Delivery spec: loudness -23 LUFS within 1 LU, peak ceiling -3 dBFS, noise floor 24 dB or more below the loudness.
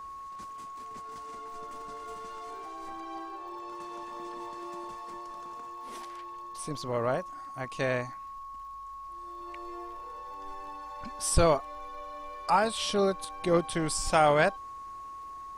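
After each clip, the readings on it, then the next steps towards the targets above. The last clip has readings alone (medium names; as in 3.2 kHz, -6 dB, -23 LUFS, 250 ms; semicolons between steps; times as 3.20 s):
tick rate 40 per s; steady tone 1.1 kHz; tone level -40 dBFS; loudness -33.0 LUFS; peak level -12.0 dBFS; loudness target -23.0 LUFS
-> de-click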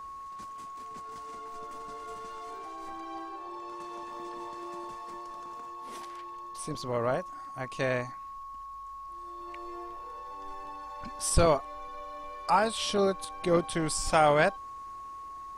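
tick rate 0.064 per s; steady tone 1.1 kHz; tone level -40 dBFS
-> band-stop 1.1 kHz, Q 30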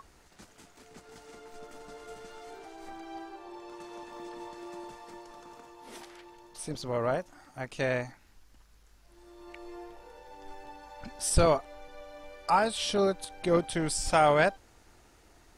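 steady tone not found; loudness -28.5 LUFS; peak level -12.5 dBFS; loudness target -23.0 LUFS
-> trim +5.5 dB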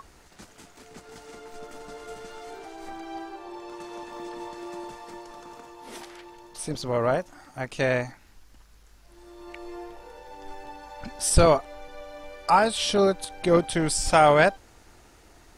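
loudness -23.0 LUFS; peak level -7.0 dBFS; noise floor -54 dBFS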